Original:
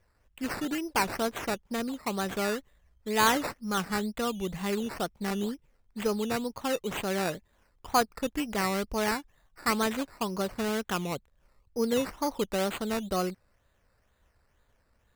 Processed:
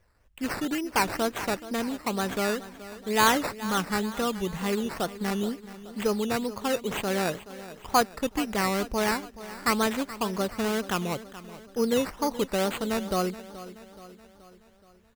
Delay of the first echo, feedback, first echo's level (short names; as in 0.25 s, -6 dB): 0.426 s, 53%, -15.5 dB